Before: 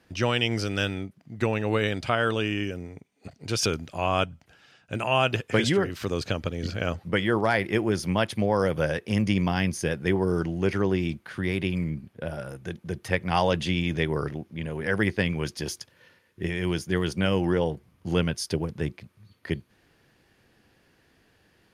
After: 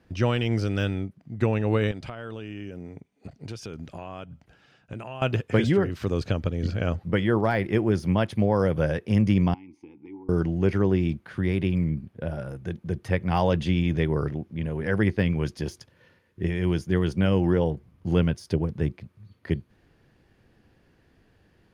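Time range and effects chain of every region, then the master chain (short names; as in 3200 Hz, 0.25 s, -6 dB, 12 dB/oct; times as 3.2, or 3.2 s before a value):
1.91–5.22 bell 87 Hz -7 dB 0.31 oct + compressor 4:1, threshold -35 dBFS
9.54–10.29 bell 170 Hz -8 dB 0.56 oct + compressor 4:1, threshold -30 dBFS + vowel filter u
whole clip: de-esser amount 70%; tilt -2 dB/oct; gain -1.5 dB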